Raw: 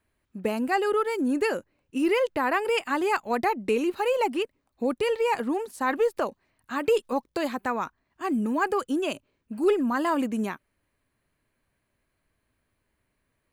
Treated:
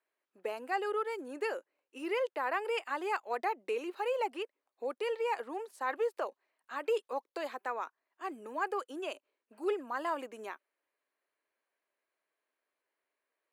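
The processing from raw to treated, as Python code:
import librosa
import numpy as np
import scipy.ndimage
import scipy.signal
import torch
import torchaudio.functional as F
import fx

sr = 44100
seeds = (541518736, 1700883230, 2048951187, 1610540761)

y = scipy.signal.sosfilt(scipy.signal.butter(4, 400.0, 'highpass', fs=sr, output='sos'), x)
y = fx.high_shelf(y, sr, hz=4800.0, db=-7.0)
y = F.gain(torch.from_numpy(y), -7.5).numpy()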